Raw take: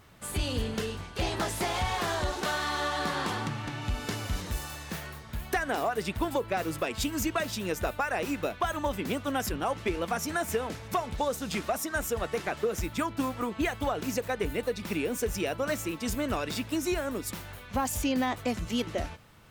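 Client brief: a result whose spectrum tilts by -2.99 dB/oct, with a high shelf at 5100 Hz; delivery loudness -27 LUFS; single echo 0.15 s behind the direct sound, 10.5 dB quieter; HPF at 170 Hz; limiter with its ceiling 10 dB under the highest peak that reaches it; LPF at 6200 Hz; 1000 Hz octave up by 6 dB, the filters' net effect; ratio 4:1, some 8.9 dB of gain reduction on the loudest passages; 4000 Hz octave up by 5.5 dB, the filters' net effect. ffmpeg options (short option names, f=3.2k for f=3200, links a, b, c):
-af "highpass=170,lowpass=6.2k,equalizer=f=1k:t=o:g=7.5,equalizer=f=4k:t=o:g=5.5,highshelf=f=5.1k:g=4,acompressor=threshold=-30dB:ratio=4,alimiter=level_in=2dB:limit=-24dB:level=0:latency=1,volume=-2dB,aecho=1:1:150:0.299,volume=8.5dB"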